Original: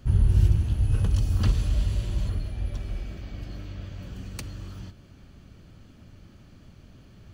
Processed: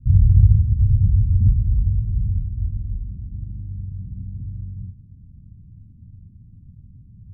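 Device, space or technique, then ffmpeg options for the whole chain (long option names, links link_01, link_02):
the neighbour's flat through the wall: -af "lowpass=frequency=200:width=0.5412,lowpass=frequency=200:width=1.3066,equalizer=frequency=100:width_type=o:width=0.92:gain=5,volume=4dB"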